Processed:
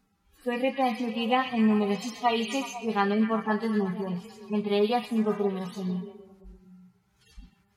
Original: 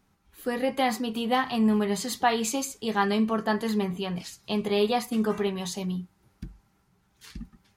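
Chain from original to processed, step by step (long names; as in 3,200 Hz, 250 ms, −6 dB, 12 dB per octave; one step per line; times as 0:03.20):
harmonic-percussive split with one part muted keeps harmonic
0:00.52–0:03.01: thirty-one-band graphic EQ 1,600 Hz −7 dB, 2,500 Hz +11 dB, 6,300 Hz +8 dB
echo through a band-pass that steps 124 ms, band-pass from 3,300 Hz, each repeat −0.7 octaves, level −5 dB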